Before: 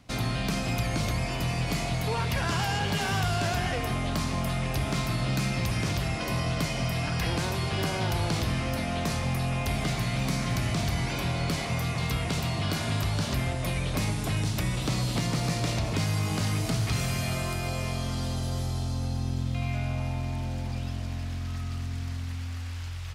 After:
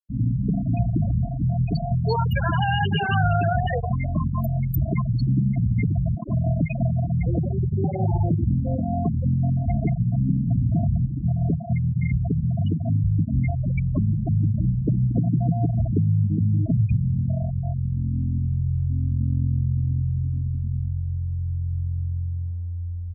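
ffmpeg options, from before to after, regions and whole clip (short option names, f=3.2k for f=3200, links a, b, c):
-filter_complex "[0:a]asettb=1/sr,asplit=3[a][b][c];[a]atrim=end=1.434[d];[b]atrim=start=1.43:end=5.22,asetpts=PTS-STARTPTS,afade=t=in:d=0.004:c=qsin,afade=t=out:st=3.786:d=0.004:c=qsin,aemphasis=mode=production:type=50kf,bandreject=f=250:w=7.6,bandreject=f=174.4:t=h:w=4,bandreject=f=348.8:t=h:w=4,bandreject=f=523.2:t=h:w=4[e];[c]atrim=start=5.216[f];[d][e]acrossfade=d=0.004:c1=hsin:c2=qsin[g];[g][f]acrossfade=d=0.004:c1=qsin:c2=hsin,afftfilt=real='re*gte(hypot(re,im),0.126)':imag='im*gte(hypot(re,im),0.126)':win_size=1024:overlap=0.75,highpass=55,volume=8.5dB"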